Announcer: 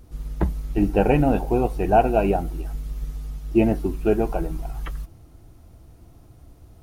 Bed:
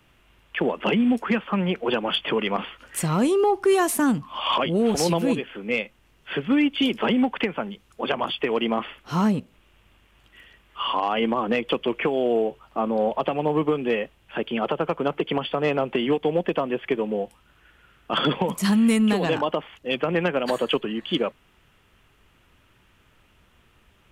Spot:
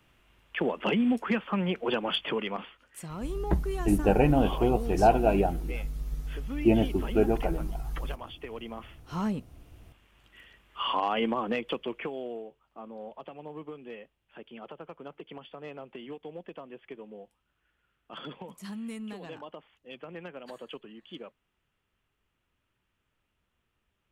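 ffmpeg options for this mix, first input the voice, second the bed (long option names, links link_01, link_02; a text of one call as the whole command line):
ffmpeg -i stem1.wav -i stem2.wav -filter_complex "[0:a]adelay=3100,volume=-4dB[link_01];[1:a]volume=7.5dB,afade=type=out:start_time=2.16:duration=0.73:silence=0.266073,afade=type=in:start_time=8.76:duration=1.22:silence=0.237137,afade=type=out:start_time=11.05:duration=1.4:silence=0.16788[link_02];[link_01][link_02]amix=inputs=2:normalize=0" out.wav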